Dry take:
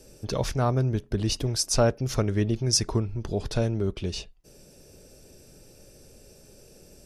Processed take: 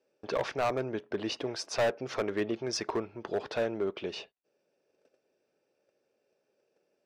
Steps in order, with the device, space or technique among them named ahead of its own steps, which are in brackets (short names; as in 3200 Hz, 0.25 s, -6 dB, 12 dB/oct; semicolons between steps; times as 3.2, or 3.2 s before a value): walkie-talkie (BPF 460–2400 Hz; hard clip -27 dBFS, distortion -7 dB; gate -55 dBFS, range -20 dB); gain +3.5 dB